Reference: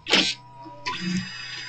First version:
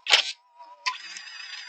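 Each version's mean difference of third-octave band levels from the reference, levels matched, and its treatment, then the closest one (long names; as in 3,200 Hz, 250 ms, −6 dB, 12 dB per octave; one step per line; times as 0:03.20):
9.5 dB: Chebyshev high-pass filter 690 Hz, order 3
transient designer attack +8 dB, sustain −8 dB
pitch vibrato 7.1 Hz 37 cents
level −4 dB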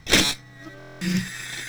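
7.0 dB: lower of the sound and its delayed copy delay 0.53 ms
in parallel at −6.5 dB: floating-point word with a short mantissa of 2 bits
on the sum: buffer that repeats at 0:00.78, samples 1,024, times 9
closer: second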